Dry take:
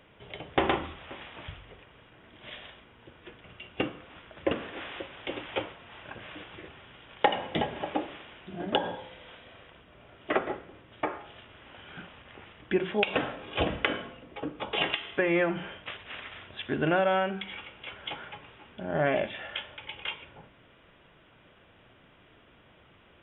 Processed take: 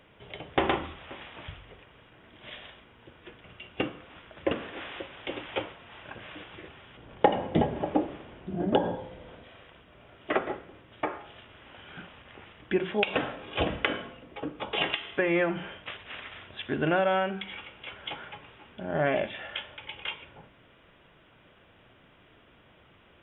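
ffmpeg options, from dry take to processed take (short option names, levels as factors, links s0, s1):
-filter_complex "[0:a]asettb=1/sr,asplit=3[s0][s1][s2];[s0]atrim=end=6.974[s3];[s1]atrim=start=6.97:end=9.44,asetpts=PTS-STARTPTS,afade=t=in:d=0.004:c=qsin,afade=t=out:st=2.466:d=0.004:c=qsin,tiltshelf=f=970:g=8.5[s4];[s2]atrim=start=9.436[s5];[s3][s4]acrossfade=d=0.004:c1=hsin:c2=qsin[s6];[s6][s5]acrossfade=d=0.004:c1=qsin:c2=hsin"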